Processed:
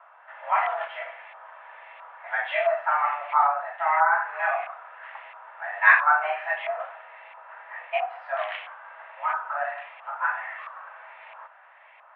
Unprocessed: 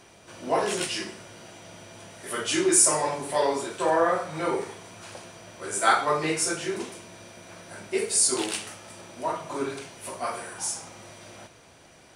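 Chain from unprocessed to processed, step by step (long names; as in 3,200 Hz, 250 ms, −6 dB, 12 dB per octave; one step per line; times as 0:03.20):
auto-filter low-pass saw up 1.5 Hz 990–2,000 Hz
single-sideband voice off tune +300 Hz 300–3,000 Hz
0:03.47–0:04.12: high-shelf EQ 2,100 Hz −8 dB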